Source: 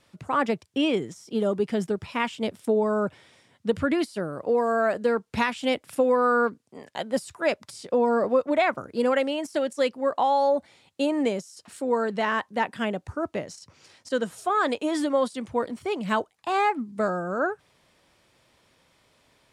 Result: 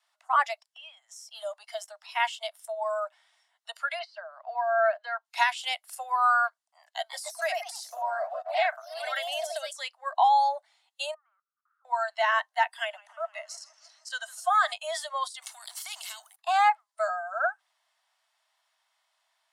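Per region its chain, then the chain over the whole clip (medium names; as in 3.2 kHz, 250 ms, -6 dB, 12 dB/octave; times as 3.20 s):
0.64–1.21 s: peaking EQ 380 Hz -12 dB 0.22 oct + compression 4:1, threshold -39 dBFS
3.99–5.25 s: distance through air 180 m + three bands compressed up and down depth 40%
6.90–9.95 s: compression 2.5:1, threshold -23 dBFS + ever faster or slower copies 151 ms, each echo +2 st, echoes 3, each echo -6 dB
11.14–11.85 s: Butterworth band-pass 1.3 kHz, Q 5.5 + compression 2:1, threshold -59 dBFS
12.62–14.72 s: high-pass 590 Hz + modulated delay 157 ms, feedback 68%, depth 117 cents, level -15.5 dB
15.42–16.36 s: FFT filter 300 Hz 0 dB, 450 Hz -6 dB, 840 Hz +5 dB, 5 kHz +3 dB, 11 kHz +8 dB + compression 16:1, threshold -29 dBFS + spectrum-flattening compressor 2:1
whole clip: steep high-pass 640 Hz 96 dB/octave; spectral noise reduction 12 dB; band-stop 2.4 kHz, Q 9.5; trim +2.5 dB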